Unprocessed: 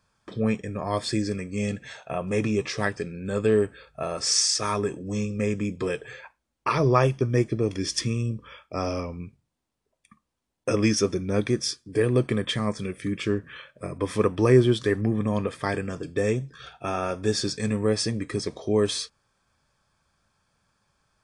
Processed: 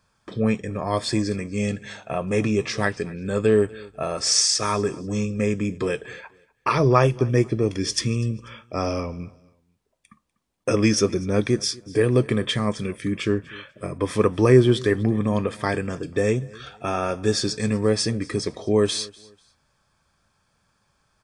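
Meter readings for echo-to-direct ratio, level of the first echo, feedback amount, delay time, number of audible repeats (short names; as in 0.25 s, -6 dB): -22.5 dB, -23.0 dB, 30%, 0.245 s, 2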